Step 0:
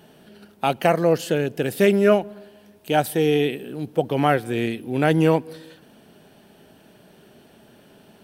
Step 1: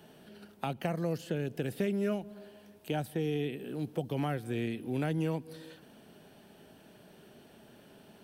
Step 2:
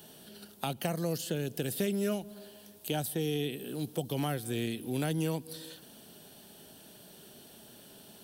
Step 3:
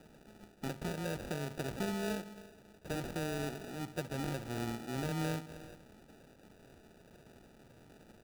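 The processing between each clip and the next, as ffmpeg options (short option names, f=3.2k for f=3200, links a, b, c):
-filter_complex "[0:a]acrossover=split=240|3400[a][b][c];[a]acompressor=threshold=-28dB:ratio=4[d];[b]acompressor=threshold=-31dB:ratio=4[e];[c]acompressor=threshold=-49dB:ratio=4[f];[d][e][f]amix=inputs=3:normalize=0,volume=-5dB"
-af "aexciter=amount=2.8:drive=6.9:freq=3.2k"
-af "aecho=1:1:69|138|207|276|345:0.188|0.0998|0.0529|0.028|0.0149,acrusher=samples=41:mix=1:aa=0.000001,volume=-5.5dB"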